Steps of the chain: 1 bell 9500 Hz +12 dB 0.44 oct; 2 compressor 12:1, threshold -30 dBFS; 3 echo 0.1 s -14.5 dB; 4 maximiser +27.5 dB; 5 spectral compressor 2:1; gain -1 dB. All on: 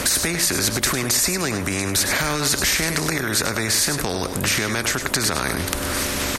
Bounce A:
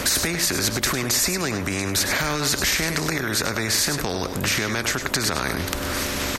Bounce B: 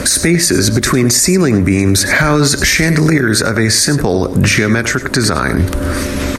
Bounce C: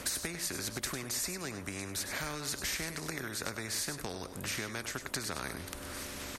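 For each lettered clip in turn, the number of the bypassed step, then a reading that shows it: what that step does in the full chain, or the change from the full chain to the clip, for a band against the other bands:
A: 1, 8 kHz band -1.5 dB; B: 5, 125 Hz band +7.0 dB; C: 4, momentary loudness spread change +1 LU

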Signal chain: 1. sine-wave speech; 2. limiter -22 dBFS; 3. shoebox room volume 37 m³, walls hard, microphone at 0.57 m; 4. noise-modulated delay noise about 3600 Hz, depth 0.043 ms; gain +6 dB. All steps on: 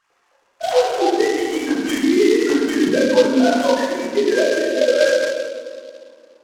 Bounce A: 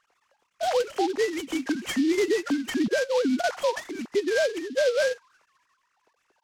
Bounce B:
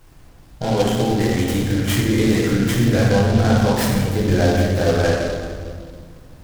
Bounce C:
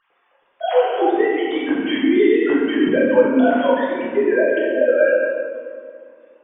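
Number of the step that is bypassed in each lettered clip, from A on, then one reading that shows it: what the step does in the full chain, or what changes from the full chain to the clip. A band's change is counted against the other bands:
3, momentary loudness spread change -4 LU; 1, 125 Hz band +26.5 dB; 4, 4 kHz band -6.0 dB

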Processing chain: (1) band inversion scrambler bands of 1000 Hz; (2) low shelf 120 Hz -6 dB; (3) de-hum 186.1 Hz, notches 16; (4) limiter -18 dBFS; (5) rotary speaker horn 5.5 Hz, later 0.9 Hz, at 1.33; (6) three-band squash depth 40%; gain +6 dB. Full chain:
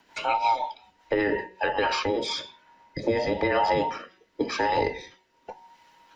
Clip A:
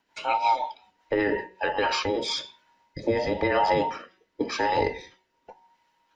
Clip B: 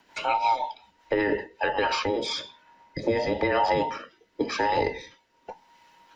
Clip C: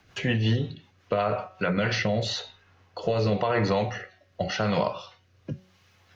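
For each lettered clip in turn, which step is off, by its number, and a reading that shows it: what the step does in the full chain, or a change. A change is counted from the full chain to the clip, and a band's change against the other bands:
6, momentary loudness spread change -6 LU; 3, momentary loudness spread change +3 LU; 1, 125 Hz band +13.0 dB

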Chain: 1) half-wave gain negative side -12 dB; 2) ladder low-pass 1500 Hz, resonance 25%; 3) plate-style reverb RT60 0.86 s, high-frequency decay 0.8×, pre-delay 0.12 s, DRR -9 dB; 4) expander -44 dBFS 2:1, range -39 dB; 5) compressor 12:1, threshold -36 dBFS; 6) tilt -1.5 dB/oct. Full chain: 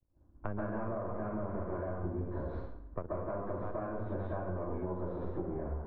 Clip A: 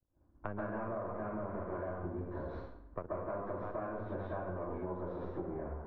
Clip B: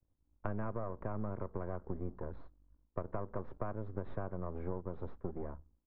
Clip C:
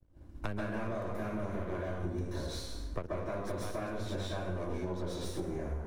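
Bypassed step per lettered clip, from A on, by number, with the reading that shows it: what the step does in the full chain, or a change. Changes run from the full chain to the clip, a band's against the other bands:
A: 6, 125 Hz band -4.0 dB; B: 3, crest factor change +3.0 dB; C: 2, 2 kHz band +5.5 dB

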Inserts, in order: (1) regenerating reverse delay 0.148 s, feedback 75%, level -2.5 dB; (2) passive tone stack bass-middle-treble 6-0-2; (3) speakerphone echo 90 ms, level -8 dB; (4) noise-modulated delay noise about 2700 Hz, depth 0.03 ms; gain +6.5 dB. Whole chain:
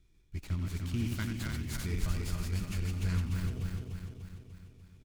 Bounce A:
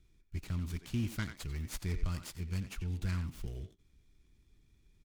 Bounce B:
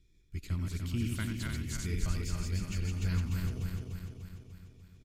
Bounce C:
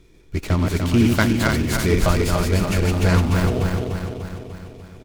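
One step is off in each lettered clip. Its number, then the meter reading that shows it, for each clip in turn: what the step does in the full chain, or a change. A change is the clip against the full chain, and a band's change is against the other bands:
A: 1, momentary loudness spread change -6 LU; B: 4, 8 kHz band +2.0 dB; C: 2, 500 Hz band +8.5 dB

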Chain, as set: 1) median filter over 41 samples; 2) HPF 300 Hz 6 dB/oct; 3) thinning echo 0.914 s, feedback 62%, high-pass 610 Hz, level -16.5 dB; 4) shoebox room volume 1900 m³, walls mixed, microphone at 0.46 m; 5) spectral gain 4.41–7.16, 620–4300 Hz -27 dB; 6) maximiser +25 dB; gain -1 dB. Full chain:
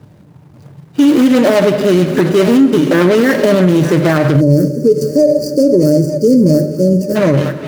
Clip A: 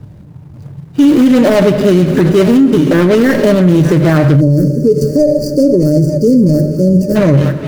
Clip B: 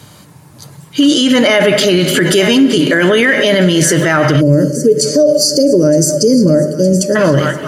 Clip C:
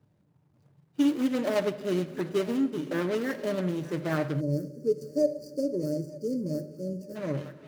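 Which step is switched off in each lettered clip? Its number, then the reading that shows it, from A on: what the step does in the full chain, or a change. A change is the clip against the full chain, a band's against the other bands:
2, 125 Hz band +4.5 dB; 1, 8 kHz band +12.5 dB; 6, crest factor change +7.0 dB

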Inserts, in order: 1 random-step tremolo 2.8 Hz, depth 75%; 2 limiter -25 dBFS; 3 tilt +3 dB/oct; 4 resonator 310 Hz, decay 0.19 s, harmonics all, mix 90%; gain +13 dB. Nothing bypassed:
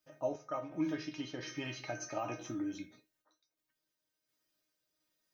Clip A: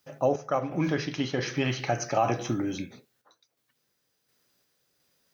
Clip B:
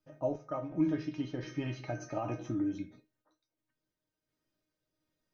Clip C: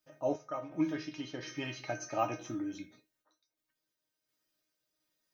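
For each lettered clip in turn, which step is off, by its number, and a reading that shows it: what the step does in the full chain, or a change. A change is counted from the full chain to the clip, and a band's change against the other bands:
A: 4, 125 Hz band +5.0 dB; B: 3, 125 Hz band +8.5 dB; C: 2, crest factor change +3.0 dB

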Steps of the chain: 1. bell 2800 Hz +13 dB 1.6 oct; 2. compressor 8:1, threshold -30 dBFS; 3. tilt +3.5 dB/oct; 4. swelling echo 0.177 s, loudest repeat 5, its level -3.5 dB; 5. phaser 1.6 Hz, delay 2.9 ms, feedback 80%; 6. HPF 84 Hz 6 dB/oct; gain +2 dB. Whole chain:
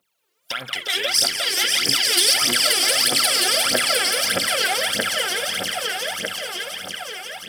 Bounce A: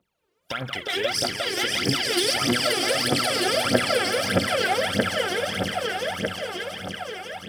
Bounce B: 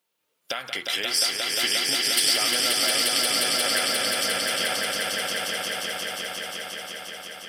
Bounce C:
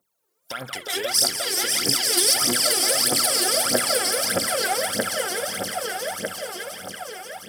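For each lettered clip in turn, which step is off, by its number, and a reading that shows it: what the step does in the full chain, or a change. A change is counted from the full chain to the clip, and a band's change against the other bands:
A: 3, 8 kHz band -12.0 dB; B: 5, loudness change -4.5 LU; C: 1, 2 kHz band -6.5 dB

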